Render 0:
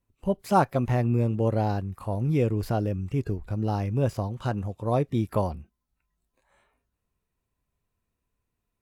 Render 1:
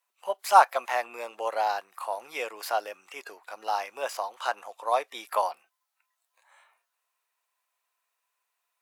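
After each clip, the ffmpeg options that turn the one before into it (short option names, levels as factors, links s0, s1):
-af "highpass=f=750:w=0.5412,highpass=f=750:w=1.3066,volume=2.37"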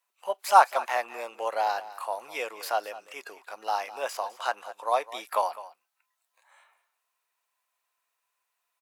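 -af "aecho=1:1:206:0.15"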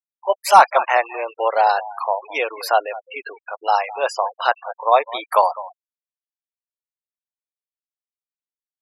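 -af "apsyclip=4.47,afftfilt=real='re*gte(hypot(re,im),0.0708)':imag='im*gte(hypot(re,im),0.0708)':win_size=1024:overlap=0.75,volume=0.794"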